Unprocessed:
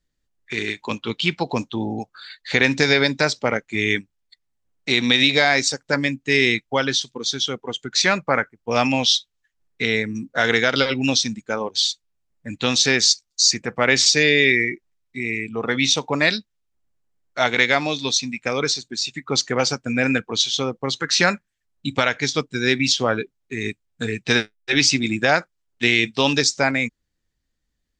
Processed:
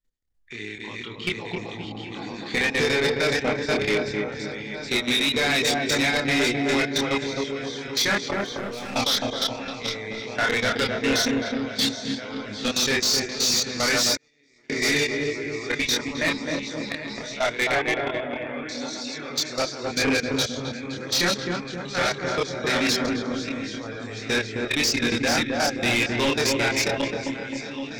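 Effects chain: regenerating reverse delay 0.386 s, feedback 66%, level -3 dB; 8.31–8.96 overloaded stage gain 19.5 dB; 17.71–18.69 Chebyshev low-pass 3400 Hz, order 8; level quantiser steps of 18 dB; darkening echo 0.262 s, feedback 52%, low-pass 980 Hz, level -4 dB; 14.14–14.7 gate -11 dBFS, range -53 dB; chorus voices 6, 0.11 Hz, delay 27 ms, depth 2.5 ms; soft clip -21 dBFS, distortion -10 dB; gain +4 dB

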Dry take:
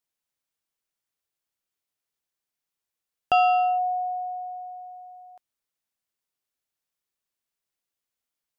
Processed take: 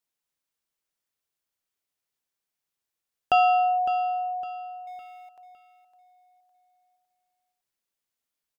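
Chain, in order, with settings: 4.87–5.29 G.711 law mismatch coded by mu; notches 60/120/180 Hz; on a send: feedback echo 0.558 s, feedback 35%, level -12 dB

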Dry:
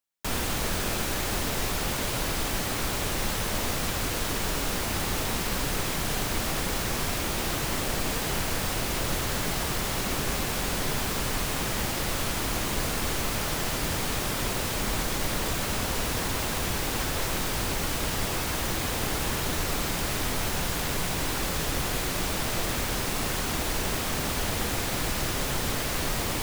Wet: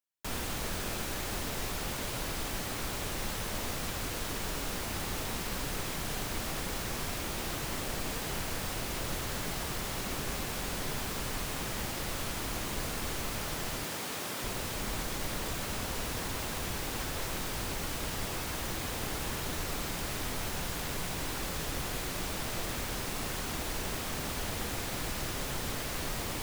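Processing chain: 13.83–14.44 Bessel high-pass 210 Hz, order 2; gain -7 dB

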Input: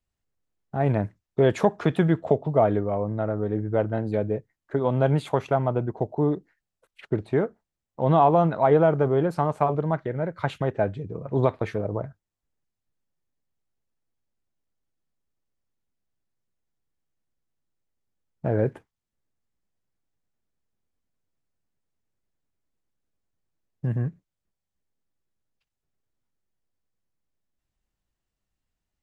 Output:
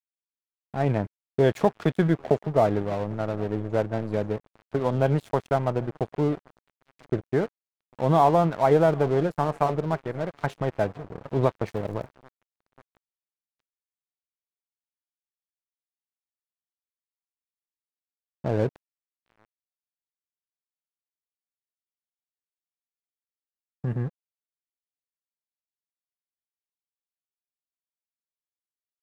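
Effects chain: 11.67–12.07 crackle 420/s -> 160/s -41 dBFS; swung echo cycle 1.335 s, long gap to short 1.5:1, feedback 47%, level -22 dB; crossover distortion -36 dBFS

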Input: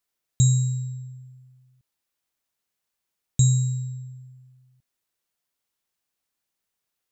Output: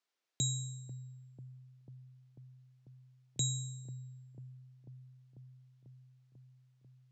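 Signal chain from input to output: three-band isolator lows -23 dB, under 240 Hz, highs -23 dB, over 6800 Hz; on a send: analogue delay 0.493 s, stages 4096, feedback 77%, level -12.5 dB; on the sum: gain -1.5 dB

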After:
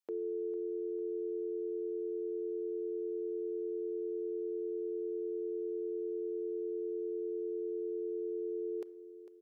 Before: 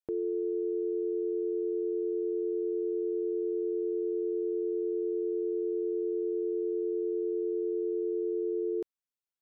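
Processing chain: HPF 300 Hz 12 dB/oct; low shelf 390 Hz -9 dB; feedback echo 0.451 s, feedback 42%, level -13.5 dB; on a send at -17.5 dB: reverb RT60 0.80 s, pre-delay 5 ms

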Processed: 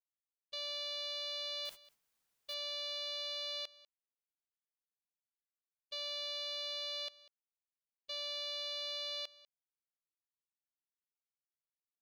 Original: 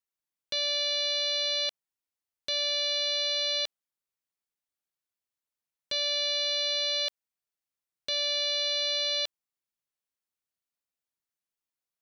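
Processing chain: Wiener smoothing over 41 samples; 1.65–2.54 requantised 8-bit, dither triangular; limiter -25.5 dBFS, peak gain reduction 4 dB; gate -40 dBFS, range -29 dB; echo 0.195 s -20.5 dB; gain -6 dB

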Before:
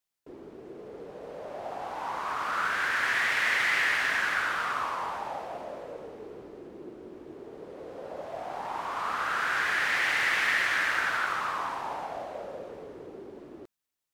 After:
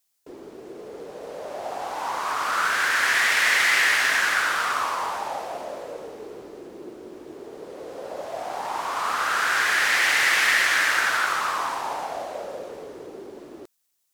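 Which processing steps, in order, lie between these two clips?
tone controls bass -6 dB, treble +9 dB; gain +5.5 dB

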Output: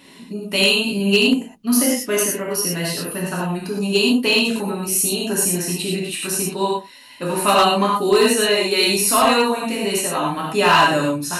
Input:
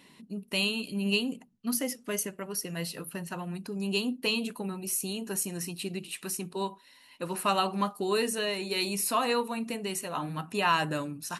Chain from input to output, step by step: non-linear reverb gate 0.14 s flat, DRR -4.5 dB; overloaded stage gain 15 dB; gain +7.5 dB

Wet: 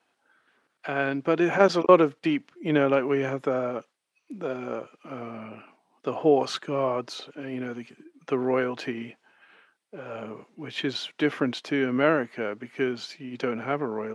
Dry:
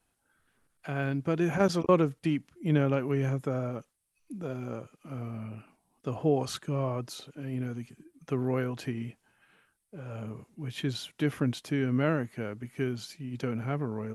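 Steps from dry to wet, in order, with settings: BPF 340–4400 Hz; gain +8.5 dB

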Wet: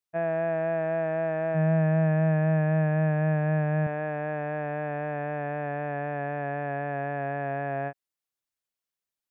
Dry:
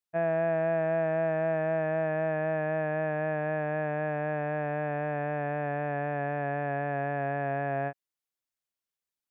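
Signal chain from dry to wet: 1.54–3.87 bell 160 Hz +15 dB 0.31 oct

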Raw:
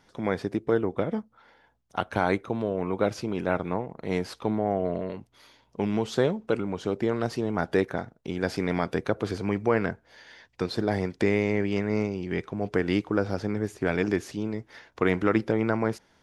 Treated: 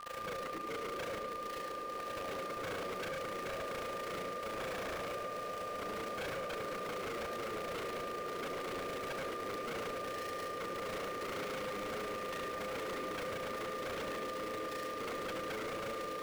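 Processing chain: delta modulation 16 kbps, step -28.5 dBFS; bell 120 Hz -8 dB 1.1 oct; limiter -18 dBFS, peak gain reduction 7 dB; vocal tract filter e; sample gate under -43 dBFS; whine 1200 Hz -46 dBFS; AM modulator 28 Hz, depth 60%; swelling echo 0.124 s, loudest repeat 8, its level -15 dB; on a send at -3 dB: reverb RT60 0.60 s, pre-delay 67 ms; on the sum: wavefolder -38.5 dBFS; gain +4 dB

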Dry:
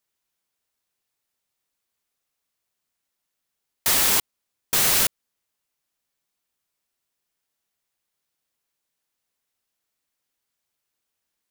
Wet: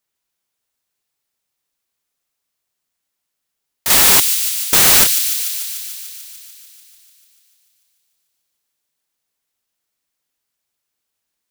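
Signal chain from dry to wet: 3.9–5.04 sample leveller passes 3; on a send: thin delay 0.147 s, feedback 74%, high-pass 3200 Hz, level -6.5 dB; on the sum: gain +2 dB

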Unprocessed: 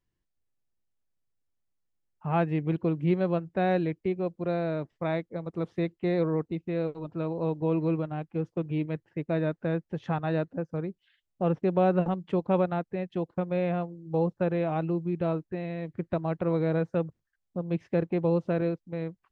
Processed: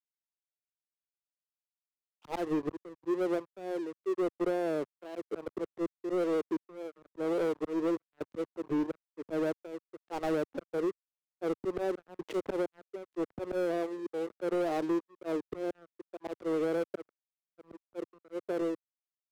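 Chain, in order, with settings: ending faded out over 4.27 s; resonant low shelf 250 Hz -14 dB, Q 3; step gate "xx..xxxx.xxx." 64 bpm -24 dB; auto swell 0.333 s; LPF 1100 Hz 6 dB/oct; tilt -1.5 dB/oct; compressor 10:1, threshold -40 dBFS, peak gain reduction 20 dB; crossover distortion -59 dBFS; HPF 72 Hz 12 dB/oct; sample leveller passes 3; vibrato 1.8 Hz 56 cents; three-band expander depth 100%; gain +5.5 dB

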